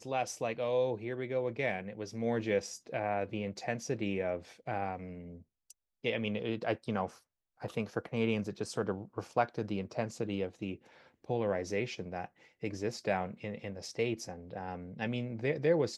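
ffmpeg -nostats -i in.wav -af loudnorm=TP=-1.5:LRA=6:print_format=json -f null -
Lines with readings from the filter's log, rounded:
"input_i" : "-35.7",
"input_tp" : "-15.7",
"input_lra" : "3.1",
"input_thresh" : "-46.0",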